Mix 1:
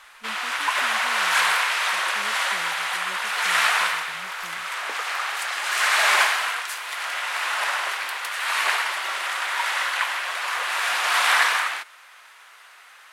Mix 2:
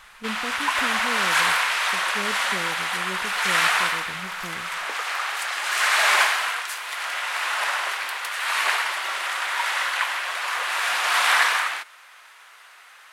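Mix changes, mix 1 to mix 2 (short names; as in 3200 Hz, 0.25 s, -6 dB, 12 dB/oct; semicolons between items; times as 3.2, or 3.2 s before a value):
speech +11.5 dB; reverb: on, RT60 1.3 s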